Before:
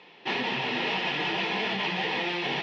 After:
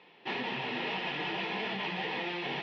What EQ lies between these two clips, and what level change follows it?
distance through air 110 m; -5.0 dB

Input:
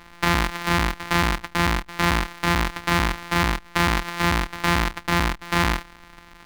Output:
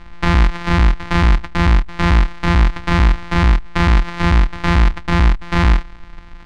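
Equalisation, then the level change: distance through air 90 m; bass shelf 60 Hz +9.5 dB; bass shelf 180 Hz +9 dB; +2.0 dB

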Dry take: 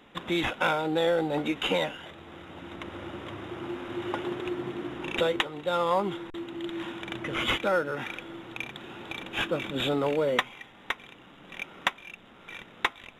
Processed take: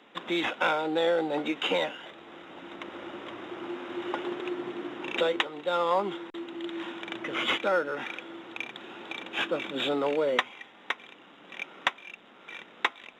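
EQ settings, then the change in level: three-band isolator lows -18 dB, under 200 Hz, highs -12 dB, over 7.5 kHz; bass shelf 76 Hz -5.5 dB; 0.0 dB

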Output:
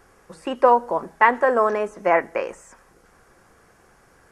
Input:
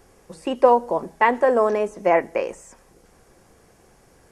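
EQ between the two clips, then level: peaking EQ 1.4 kHz +10 dB 1.1 oct; -3.0 dB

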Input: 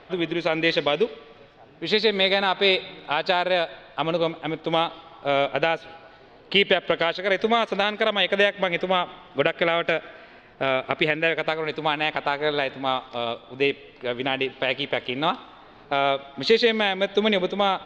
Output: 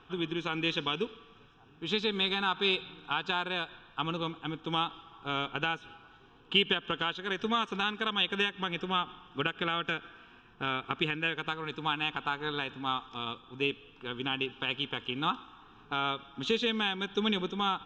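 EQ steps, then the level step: static phaser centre 3 kHz, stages 8; -4.0 dB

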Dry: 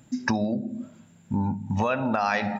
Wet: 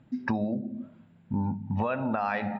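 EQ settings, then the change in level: distance through air 460 m; peaking EQ 5.5 kHz +5 dB 1.5 oct; -2.5 dB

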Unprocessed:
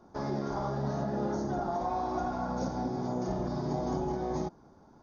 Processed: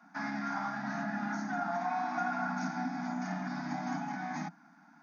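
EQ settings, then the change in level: elliptic high-pass 170 Hz, stop band 40 dB; elliptic band-stop 290–700 Hz, stop band 40 dB; high-order bell 1.9 kHz +13.5 dB 1.1 oct; 0.0 dB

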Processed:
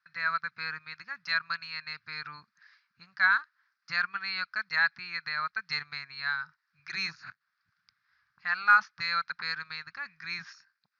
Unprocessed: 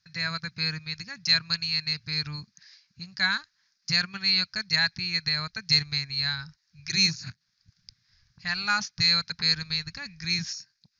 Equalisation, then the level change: band-pass filter 1.3 kHz, Q 3; distance through air 100 m; +8.5 dB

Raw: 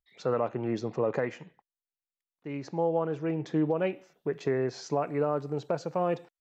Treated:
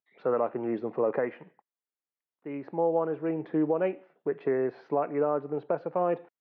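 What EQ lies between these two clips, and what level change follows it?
band-pass 250–2500 Hz; distance through air 370 m; +3.0 dB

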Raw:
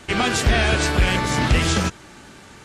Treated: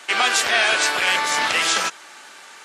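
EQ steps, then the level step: high-pass 790 Hz 12 dB/octave; +4.5 dB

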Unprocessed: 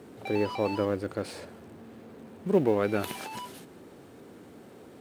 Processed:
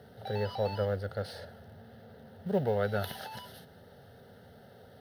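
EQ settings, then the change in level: peaking EQ 93 Hz +5.5 dB 0.92 oct; static phaser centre 1.6 kHz, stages 8; 0.0 dB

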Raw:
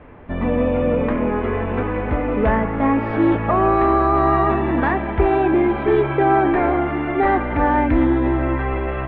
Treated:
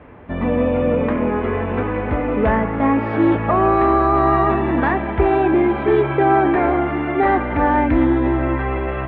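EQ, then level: high-pass 50 Hz; +1.0 dB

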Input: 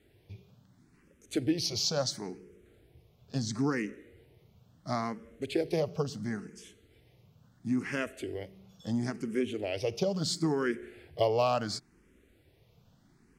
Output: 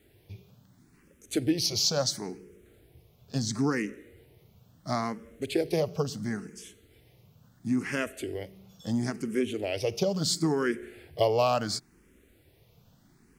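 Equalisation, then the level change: treble shelf 9.6 kHz +11 dB; +2.5 dB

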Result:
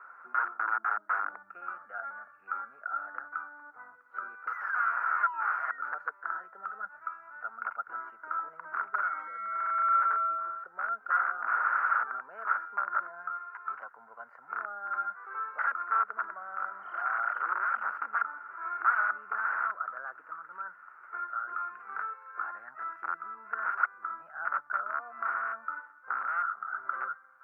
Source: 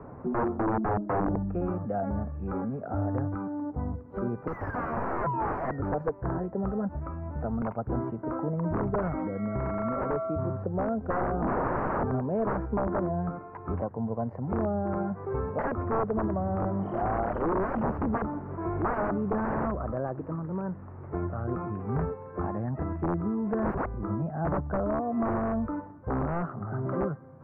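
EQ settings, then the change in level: resonant high-pass 1.4 kHz, resonance Q 11; treble shelf 2.3 kHz +9 dB; -7.5 dB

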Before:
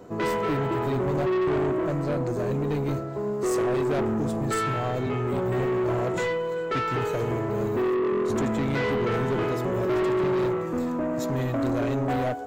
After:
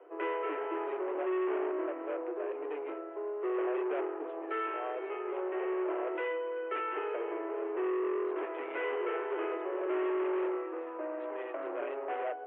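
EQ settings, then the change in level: steep high-pass 320 Hz 96 dB/octave; steep low-pass 3 kHz 72 dB/octave; -7.5 dB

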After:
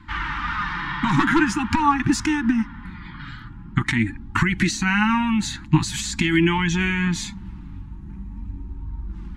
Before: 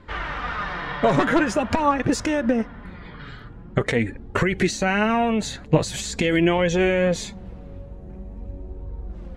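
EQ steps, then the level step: Chebyshev band-stop 330–850 Hz, order 4; +3.0 dB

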